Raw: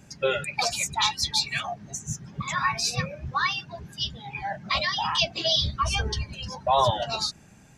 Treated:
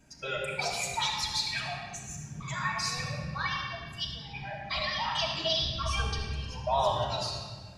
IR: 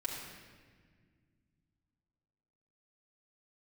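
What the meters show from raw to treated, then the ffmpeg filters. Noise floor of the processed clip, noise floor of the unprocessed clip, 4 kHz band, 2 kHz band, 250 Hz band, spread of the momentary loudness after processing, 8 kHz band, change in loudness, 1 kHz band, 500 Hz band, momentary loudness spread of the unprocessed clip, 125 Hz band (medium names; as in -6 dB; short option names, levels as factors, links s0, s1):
-46 dBFS, -52 dBFS, -5.5 dB, -4.5 dB, -4.0 dB, 11 LU, -6.5 dB, -5.5 dB, -5.5 dB, -4.5 dB, 11 LU, -3.5 dB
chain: -filter_complex "[1:a]atrim=start_sample=2205[s0];[0:a][s0]afir=irnorm=-1:irlink=0,volume=0.447"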